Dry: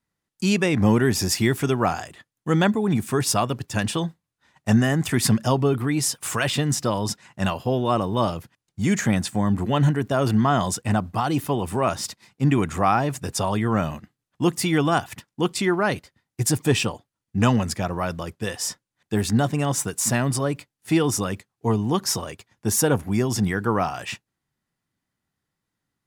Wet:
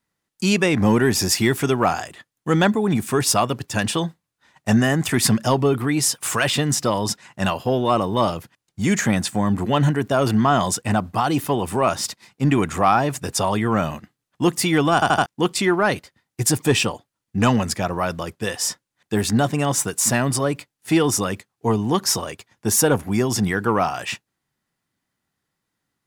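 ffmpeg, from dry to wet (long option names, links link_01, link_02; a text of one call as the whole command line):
ffmpeg -i in.wav -filter_complex "[0:a]asplit=5[link_01][link_02][link_03][link_04][link_05];[link_01]atrim=end=15.022[link_06];[link_02]atrim=start=14.938:end=15.022[link_07];[link_03]atrim=start=14.938:end=15.022[link_08];[link_04]atrim=start=14.938:end=15.022[link_09];[link_05]atrim=start=15.258[link_10];[link_06][link_07]acrossfade=duration=0.004:curve1=hsin:curve2=hsin[link_11];[link_11][link_08]acrossfade=duration=0.004:curve1=hsin:curve2=hsin[link_12];[link_12][link_09]acrossfade=duration=0.004:curve1=hsin:curve2=hsin[link_13];[link_13][link_10]acrossfade=duration=0.004:curve1=hsin:curve2=hsin,lowshelf=frequency=180:gain=-6,acontrast=60,volume=-2dB" out.wav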